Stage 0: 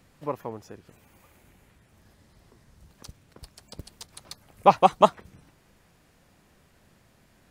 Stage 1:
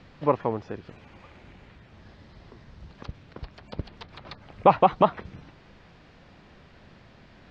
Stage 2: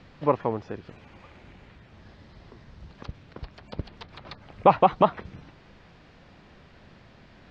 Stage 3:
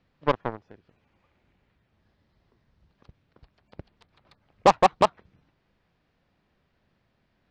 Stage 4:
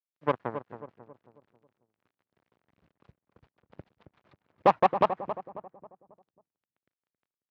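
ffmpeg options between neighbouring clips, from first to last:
-filter_complex "[0:a]acrossover=split=3300[a][b];[b]acompressor=threshold=-60dB:ratio=4:attack=1:release=60[c];[a][c]amix=inputs=2:normalize=0,lowpass=f=4.6k:w=0.5412,lowpass=f=4.6k:w=1.3066,alimiter=limit=-14.5dB:level=0:latency=1:release=82,volume=8.5dB"
-af anull
-af "aeval=exprs='0.531*(cos(1*acos(clip(val(0)/0.531,-1,1)))-cos(1*PI/2))+0.0668*(cos(7*acos(clip(val(0)/0.531,-1,1)))-cos(7*PI/2))':c=same"
-filter_complex "[0:a]acrusher=bits=9:mix=0:aa=0.000001,highpass=100,lowpass=2.4k,asplit=2[a][b];[b]adelay=271,lowpass=f=1.3k:p=1,volume=-9.5dB,asplit=2[c][d];[d]adelay=271,lowpass=f=1.3k:p=1,volume=0.45,asplit=2[e][f];[f]adelay=271,lowpass=f=1.3k:p=1,volume=0.45,asplit=2[g][h];[h]adelay=271,lowpass=f=1.3k:p=1,volume=0.45,asplit=2[i][j];[j]adelay=271,lowpass=f=1.3k:p=1,volume=0.45[k];[c][e][g][i][k]amix=inputs=5:normalize=0[l];[a][l]amix=inputs=2:normalize=0,volume=-3.5dB"

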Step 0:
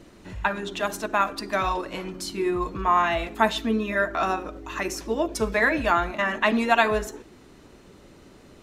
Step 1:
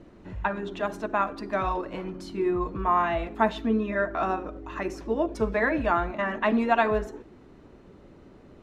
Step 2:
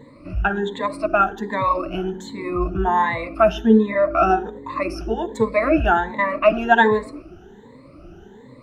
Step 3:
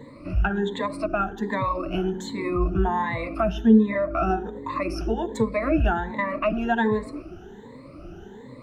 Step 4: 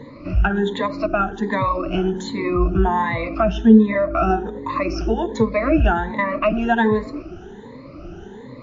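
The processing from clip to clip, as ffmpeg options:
-af "lowpass=f=1.1k:p=1"
-af "afftfilt=real='re*pow(10,23/40*sin(2*PI*(1*log(max(b,1)*sr/1024/100)/log(2)-(1.3)*(pts-256)/sr)))':imag='im*pow(10,23/40*sin(2*PI*(1*log(max(b,1)*sr/1024/100)/log(2)-(1.3)*(pts-256)/sr)))':win_size=1024:overlap=0.75,volume=2dB"
-filter_complex "[0:a]acrossover=split=260[a][b];[b]acompressor=threshold=-29dB:ratio=2.5[c];[a][c]amix=inputs=2:normalize=0,volume=1.5dB"
-af "volume=5.5dB" -ar 16000 -c:a libmp3lame -b:a 40k

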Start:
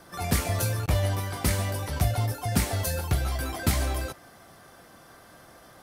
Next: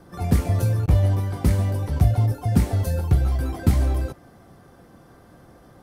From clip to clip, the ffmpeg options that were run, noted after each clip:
-af "tiltshelf=f=760:g=8,bandreject=f=630:w=12"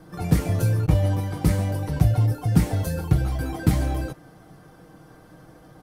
-af "aecho=1:1:6.4:0.57"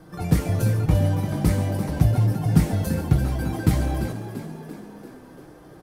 -filter_complex "[0:a]asplit=8[a][b][c][d][e][f][g][h];[b]adelay=341,afreqshift=47,volume=-10.5dB[i];[c]adelay=682,afreqshift=94,volume=-15.2dB[j];[d]adelay=1023,afreqshift=141,volume=-20dB[k];[e]adelay=1364,afreqshift=188,volume=-24.7dB[l];[f]adelay=1705,afreqshift=235,volume=-29.4dB[m];[g]adelay=2046,afreqshift=282,volume=-34.2dB[n];[h]adelay=2387,afreqshift=329,volume=-38.9dB[o];[a][i][j][k][l][m][n][o]amix=inputs=8:normalize=0"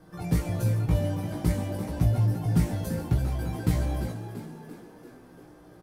-filter_complex "[0:a]asplit=2[a][b];[b]adelay=17,volume=-4dB[c];[a][c]amix=inputs=2:normalize=0,volume=-7dB"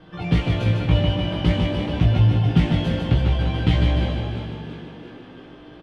-filter_complex "[0:a]lowpass=f=3.1k:t=q:w=5.1,asplit=2[a][b];[b]aecho=0:1:150|300|450|600|750|900|1050:0.562|0.309|0.17|0.0936|0.0515|0.0283|0.0156[c];[a][c]amix=inputs=2:normalize=0,volume=5.5dB"

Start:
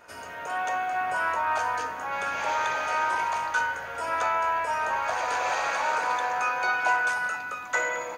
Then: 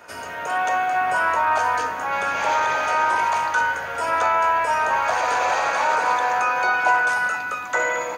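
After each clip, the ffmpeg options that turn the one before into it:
-filter_complex "[0:a]highpass=59,acrossover=split=160|1400[a][b][c];[c]alimiter=level_in=3.5dB:limit=-24dB:level=0:latency=1,volume=-3.5dB[d];[a][b][d]amix=inputs=3:normalize=0,volume=7dB"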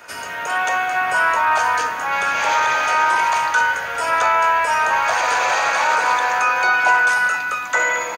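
-filter_complex "[0:a]acrossover=split=1300[a][b];[a]asplit=2[c][d];[d]adelay=17,volume=-11.5dB[e];[c][e]amix=inputs=2:normalize=0[f];[b]acontrast=68[g];[f][g]amix=inputs=2:normalize=0"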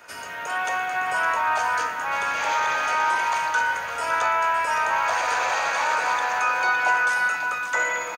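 -af "aecho=1:1:561:0.316,volume=-6dB"

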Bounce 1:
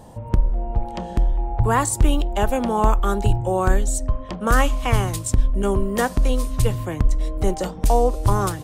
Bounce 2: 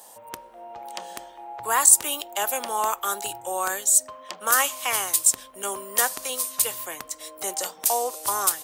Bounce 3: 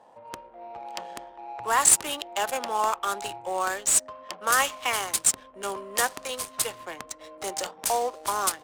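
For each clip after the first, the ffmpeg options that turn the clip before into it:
-af "highpass=720,aemphasis=mode=production:type=75fm,volume=-1.5dB"
-af "adynamicsmooth=sensitivity=8:basefreq=1.2k"

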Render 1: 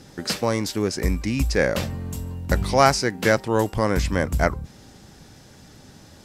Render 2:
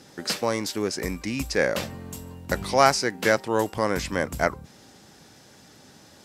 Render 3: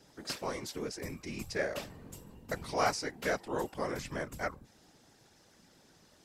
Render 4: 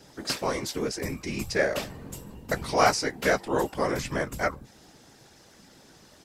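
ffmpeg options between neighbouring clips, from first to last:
-af "highpass=f=270:p=1,volume=-1dB"
-af "afftfilt=real='hypot(re,im)*cos(2*PI*random(0))':imag='hypot(re,im)*sin(2*PI*random(1))':win_size=512:overlap=0.75,volume=-5.5dB"
-filter_complex "[0:a]asplit=2[a][b];[b]adelay=15,volume=-13dB[c];[a][c]amix=inputs=2:normalize=0,volume=8.5dB"

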